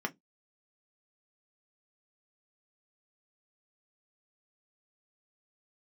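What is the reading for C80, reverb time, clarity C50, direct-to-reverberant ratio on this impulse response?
40.5 dB, no single decay rate, 28.0 dB, 4.0 dB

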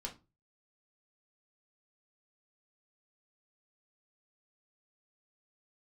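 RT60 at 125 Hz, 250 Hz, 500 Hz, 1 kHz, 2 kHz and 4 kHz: 0.50 s, 0.35 s, 0.30 s, 0.25 s, 0.20 s, 0.20 s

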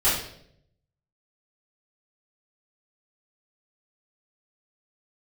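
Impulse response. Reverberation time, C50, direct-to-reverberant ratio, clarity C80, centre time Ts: 0.70 s, 3.0 dB, -13.0 dB, 7.0 dB, 48 ms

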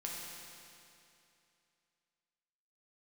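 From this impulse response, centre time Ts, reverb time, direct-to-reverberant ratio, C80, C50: 139 ms, 2.7 s, -3.5 dB, 0.5 dB, -1.0 dB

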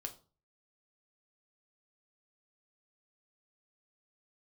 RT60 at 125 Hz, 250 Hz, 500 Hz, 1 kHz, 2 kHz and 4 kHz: 0.55 s, 0.45 s, 0.40 s, 0.35 s, 0.25 s, 0.30 s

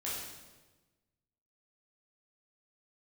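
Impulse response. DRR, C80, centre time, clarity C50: -8.0 dB, 3.0 dB, 76 ms, 0.0 dB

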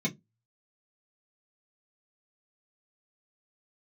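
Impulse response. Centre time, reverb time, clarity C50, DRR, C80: 12 ms, 0.15 s, 21.5 dB, -5.0 dB, 32.5 dB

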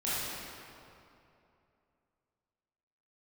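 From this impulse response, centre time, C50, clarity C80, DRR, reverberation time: 180 ms, -5.0 dB, -2.0 dB, -11.0 dB, 2.8 s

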